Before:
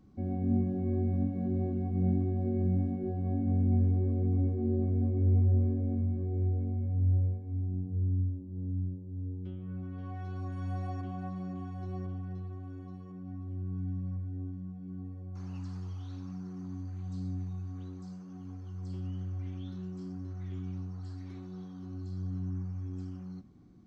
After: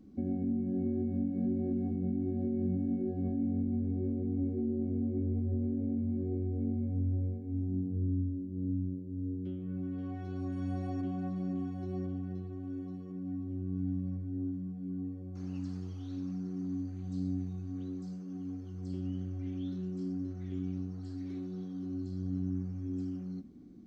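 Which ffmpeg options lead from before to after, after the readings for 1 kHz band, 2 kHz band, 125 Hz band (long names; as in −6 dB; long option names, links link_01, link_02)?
−5.0 dB, can't be measured, −5.5 dB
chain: -af "equalizer=frequency=125:width_type=o:width=1:gain=-7,equalizer=frequency=250:width_type=o:width=1:gain=10,equalizer=frequency=500:width_type=o:width=1:gain=3,equalizer=frequency=1000:width_type=o:width=1:gain=-8,alimiter=level_in=1dB:limit=-24dB:level=0:latency=1:release=285,volume=-1dB"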